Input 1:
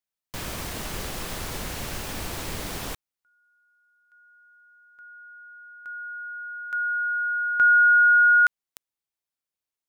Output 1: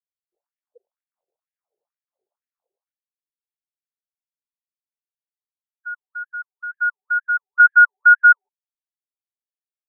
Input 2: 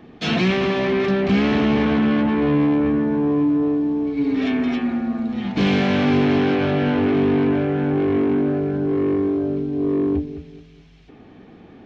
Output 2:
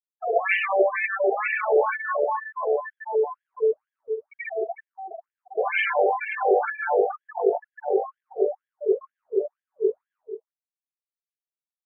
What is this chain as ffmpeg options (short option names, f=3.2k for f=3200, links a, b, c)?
-af "afftfilt=real='re*gte(hypot(re,im),0.1)':imag='im*gte(hypot(re,im),0.1)':win_size=1024:overlap=0.75,afftfilt=real='re*between(b*sr/1024,540*pow(2400/540,0.5+0.5*sin(2*PI*2.1*pts/sr))/1.41,540*pow(2400/540,0.5+0.5*sin(2*PI*2.1*pts/sr))*1.41)':imag='im*between(b*sr/1024,540*pow(2400/540,0.5+0.5*sin(2*PI*2.1*pts/sr))/1.41,540*pow(2400/540,0.5+0.5*sin(2*PI*2.1*pts/sr))*1.41)':win_size=1024:overlap=0.75,volume=8.5dB"